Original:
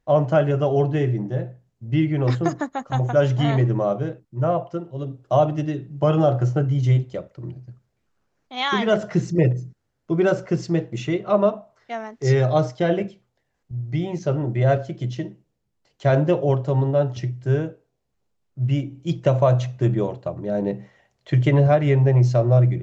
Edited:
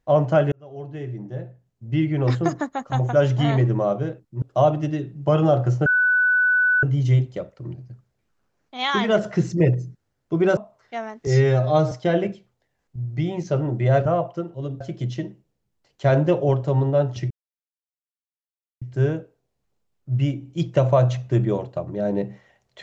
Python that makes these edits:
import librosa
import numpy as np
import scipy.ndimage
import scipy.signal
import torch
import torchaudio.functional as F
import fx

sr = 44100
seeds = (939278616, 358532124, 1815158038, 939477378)

y = fx.edit(x, sr, fx.fade_in_span(start_s=0.52, length_s=1.75),
    fx.move(start_s=4.42, length_s=0.75, to_s=14.81),
    fx.insert_tone(at_s=6.61, length_s=0.97, hz=1490.0, db=-15.0),
    fx.cut(start_s=10.35, length_s=1.19),
    fx.stretch_span(start_s=12.24, length_s=0.43, factor=1.5),
    fx.insert_silence(at_s=17.31, length_s=1.51), tone=tone)